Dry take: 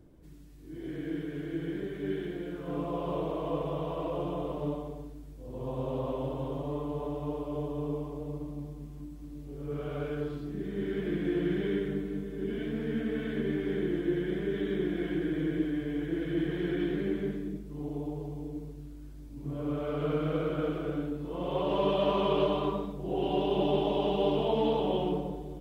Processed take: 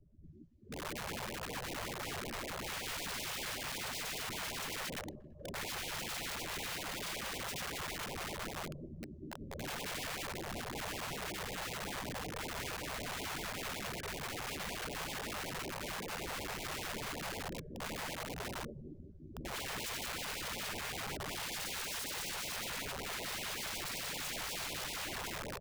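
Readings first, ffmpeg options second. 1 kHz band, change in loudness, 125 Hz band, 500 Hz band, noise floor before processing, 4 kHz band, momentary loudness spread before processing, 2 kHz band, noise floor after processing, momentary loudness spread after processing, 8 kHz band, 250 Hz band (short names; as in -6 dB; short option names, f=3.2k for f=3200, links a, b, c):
-5.0 dB, -7.5 dB, -11.5 dB, -15.0 dB, -45 dBFS, +4.0 dB, 12 LU, +4.5 dB, -52 dBFS, 5 LU, n/a, -16.5 dB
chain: -filter_complex "[0:a]bandreject=f=50:t=h:w=6,bandreject=f=100:t=h:w=6,bandreject=f=150:t=h:w=6,bandreject=f=200:t=h:w=6,bandreject=f=250:t=h:w=6,bandreject=f=300:t=h:w=6,bandreject=f=350:t=h:w=6,bandreject=f=400:t=h:w=6,bandreject=f=450:t=h:w=6,bandreject=f=500:t=h:w=6,afftfilt=real='hypot(re,im)*cos(2*PI*random(0))':imag='hypot(re,im)*sin(2*PI*random(1))':win_size=512:overlap=0.75,acompressor=threshold=-39dB:ratio=5,afftdn=nr=24:nf=-52,aresample=16000,aresample=44100,equalizer=f=590:w=7:g=15,aeval=exprs='0.0266*(abs(mod(val(0)/0.0266+3,4)-2)-1)':c=same,lowshelf=f=98:g=4.5,asplit=2[a][b];[b]adelay=13,volume=-6.5dB[c];[a][c]amix=inputs=2:normalize=0,aecho=1:1:192|384|576|768:0.0794|0.0437|0.024|0.0132,aeval=exprs='(mod(106*val(0)+1,2)-1)/106':c=same,afftfilt=real='re*(1-between(b*sr/1024,240*pow(1500/240,0.5+0.5*sin(2*PI*5.3*pts/sr))/1.41,240*pow(1500/240,0.5+0.5*sin(2*PI*5.3*pts/sr))*1.41))':imag='im*(1-between(b*sr/1024,240*pow(1500/240,0.5+0.5*sin(2*PI*5.3*pts/sr))/1.41,240*pow(1500/240,0.5+0.5*sin(2*PI*5.3*pts/sr))*1.41))':win_size=1024:overlap=0.75,volume=5dB"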